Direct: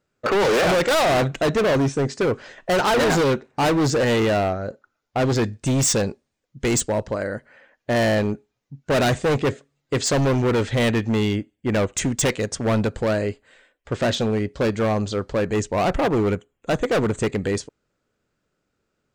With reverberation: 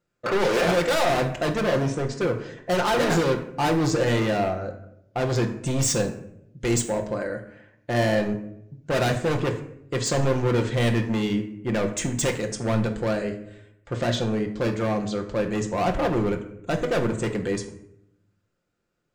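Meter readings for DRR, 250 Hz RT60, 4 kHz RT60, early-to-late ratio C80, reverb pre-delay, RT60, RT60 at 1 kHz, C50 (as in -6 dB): 3.5 dB, 1.0 s, 0.45 s, 13.5 dB, 6 ms, 0.75 s, 0.65 s, 10.5 dB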